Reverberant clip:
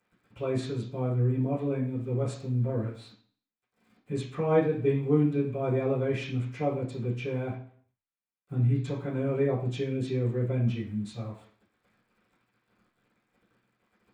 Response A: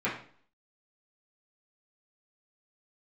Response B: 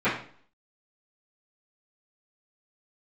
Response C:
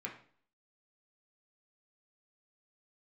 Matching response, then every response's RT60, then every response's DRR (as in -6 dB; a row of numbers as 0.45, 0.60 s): B; 0.50, 0.50, 0.50 s; -10.0, -17.5, -2.0 dB